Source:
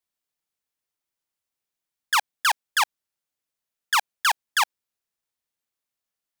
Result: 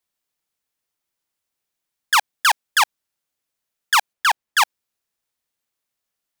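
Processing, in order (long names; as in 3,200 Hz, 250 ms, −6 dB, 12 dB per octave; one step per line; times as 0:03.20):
0:04.13–0:04.58: high-shelf EQ 3,800 Hz −6.5 dB
level +5 dB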